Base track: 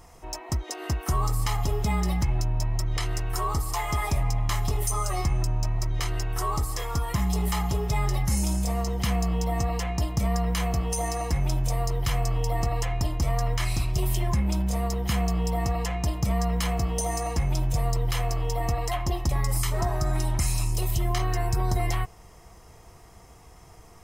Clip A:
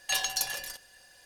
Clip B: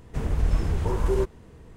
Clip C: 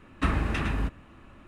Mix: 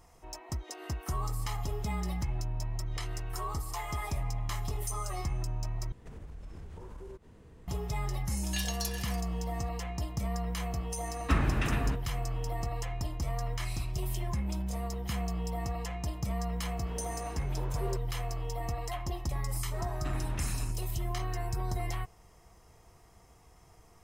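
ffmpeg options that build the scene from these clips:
ffmpeg -i bed.wav -i cue0.wav -i cue1.wav -i cue2.wav -filter_complex "[2:a]asplit=2[link_01][link_02];[3:a]asplit=2[link_03][link_04];[0:a]volume=-8.5dB[link_05];[link_01]acompressor=threshold=-36dB:ratio=6:attack=3.2:release=140:knee=1:detection=peak[link_06];[1:a]highpass=1300[link_07];[link_02]highpass=350,lowpass=3500[link_08];[link_04]asoftclip=type=tanh:threshold=-25.5dB[link_09];[link_05]asplit=2[link_10][link_11];[link_10]atrim=end=5.924[link_12];[link_06]atrim=end=1.76,asetpts=PTS-STARTPTS,volume=-6.5dB[link_13];[link_11]atrim=start=7.676[link_14];[link_07]atrim=end=1.25,asetpts=PTS-STARTPTS,volume=-7dB,afade=type=in:duration=0.004:curve=hsin,afade=type=out:start_time=1.246:duration=0.004:curve=hsin,adelay=8440[link_15];[link_03]atrim=end=1.47,asetpts=PTS-STARTPTS,volume=-2.5dB,afade=type=in:duration=0.004:curve=hsin,afade=type=out:start_time=1.466:duration=0.004:curve=hsin,adelay=11070[link_16];[link_08]atrim=end=1.76,asetpts=PTS-STARTPTS,volume=-10.5dB,afade=type=in:duration=0.004:curve=hsin,afade=type=out:start_time=1.756:duration=0.004:curve=hsin,adelay=16720[link_17];[link_09]atrim=end=1.47,asetpts=PTS-STARTPTS,volume=-10.5dB,afade=type=in:duration=0.004:curve=hsin,afade=type=out:start_time=1.466:duration=0.004:curve=hsin,adelay=19830[link_18];[link_12][link_13]acrossfade=duration=0.004:curve1=hsin:curve2=hsin[link_19];[link_19][link_14]acrossfade=duration=0.004:curve1=hsin:curve2=hsin[link_20];[link_20][link_15][link_16][link_17][link_18]amix=inputs=5:normalize=0" out.wav

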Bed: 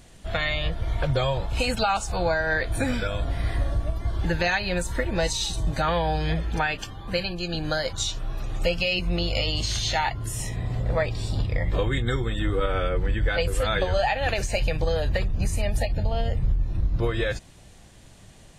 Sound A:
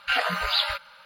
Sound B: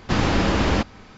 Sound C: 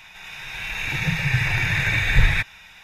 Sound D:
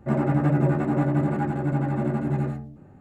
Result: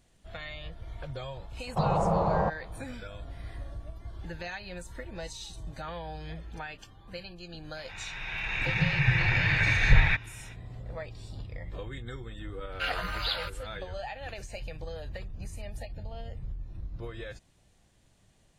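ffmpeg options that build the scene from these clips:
ffmpeg -i bed.wav -i cue0.wav -i cue1.wav -i cue2.wav -filter_complex "[0:a]volume=-15dB[link_01];[2:a]firequalizer=gain_entry='entry(100,0);entry(160,14);entry(250,-13);entry(480,10);entry(690,14);entry(1100,9);entry(1600,-12);entry(3900,-21);entry(6200,-20);entry(8900,-9)':delay=0.05:min_phase=1[link_02];[3:a]lowpass=3300[link_03];[link_02]atrim=end=1.17,asetpts=PTS-STARTPTS,volume=-12dB,afade=type=in:duration=0.004:curve=hsin,afade=type=out:start_time=1.166:duration=0.004:curve=hsin,adelay=1670[link_04];[link_03]atrim=end=2.83,asetpts=PTS-STARTPTS,volume=-3dB,afade=type=in:duration=0.05,afade=type=out:start_time=2.78:duration=0.05,adelay=7740[link_05];[1:a]atrim=end=1.05,asetpts=PTS-STARTPTS,volume=-8dB,afade=type=in:duration=0.004:curve=hsin,afade=type=out:start_time=1.046:duration=0.004:curve=hsin,adelay=12720[link_06];[link_01][link_04][link_05][link_06]amix=inputs=4:normalize=0" out.wav

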